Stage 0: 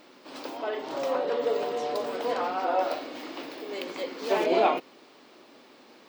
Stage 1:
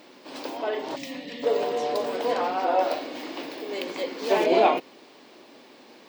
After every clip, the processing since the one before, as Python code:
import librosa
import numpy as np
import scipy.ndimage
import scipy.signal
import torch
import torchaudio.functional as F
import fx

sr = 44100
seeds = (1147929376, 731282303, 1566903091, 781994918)

y = scipy.signal.sosfilt(scipy.signal.butter(2, 66.0, 'highpass', fs=sr, output='sos'), x)
y = fx.spec_box(y, sr, start_s=0.96, length_s=0.47, low_hz=310.0, high_hz=1700.0, gain_db=-19)
y = fx.peak_eq(y, sr, hz=1300.0, db=-5.5, octaves=0.29)
y = y * librosa.db_to_amplitude(3.5)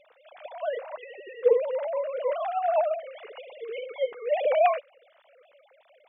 y = fx.sine_speech(x, sr)
y = y * librosa.db_to_amplitude(-1.5)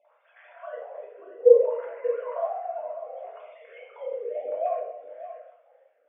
y = fx.wah_lfo(x, sr, hz=0.62, low_hz=300.0, high_hz=1800.0, q=4.3)
y = y + 10.0 ** (-12.5 / 20.0) * np.pad(y, (int(585 * sr / 1000.0), 0))[:len(y)]
y = fx.room_shoebox(y, sr, seeds[0], volume_m3=200.0, walls='mixed', distance_m=1.6)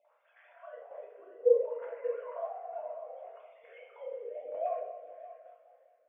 y = fx.tremolo_shape(x, sr, shape='saw_down', hz=1.1, depth_pct=50)
y = fx.echo_feedback(y, sr, ms=208, feedback_pct=58, wet_db=-16)
y = y * librosa.db_to_amplitude(-5.5)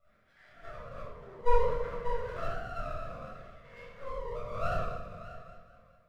y = fx.lower_of_two(x, sr, delay_ms=0.54)
y = 10.0 ** (-21.0 / 20.0) * np.tanh(y / 10.0 ** (-21.0 / 20.0))
y = fx.room_shoebox(y, sr, seeds[1], volume_m3=960.0, walls='furnished', distance_m=6.8)
y = y * librosa.db_to_amplitude(-4.5)